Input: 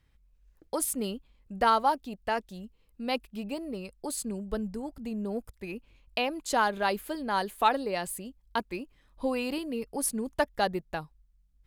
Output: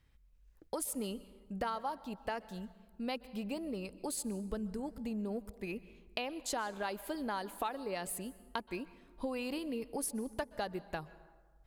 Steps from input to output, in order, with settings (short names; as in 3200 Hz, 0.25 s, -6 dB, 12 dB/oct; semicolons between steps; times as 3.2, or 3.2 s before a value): compressor 6:1, threshold -33 dBFS, peak gain reduction 14.5 dB; plate-style reverb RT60 1.4 s, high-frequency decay 0.55×, pre-delay 0.115 s, DRR 17 dB; gain -1.5 dB